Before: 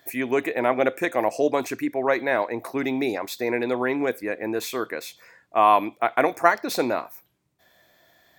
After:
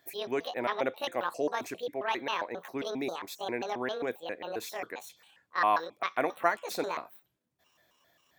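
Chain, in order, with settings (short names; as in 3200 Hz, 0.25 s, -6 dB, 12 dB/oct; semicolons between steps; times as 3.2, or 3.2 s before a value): trilling pitch shifter +8.5 st, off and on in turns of 0.134 s; gain -9 dB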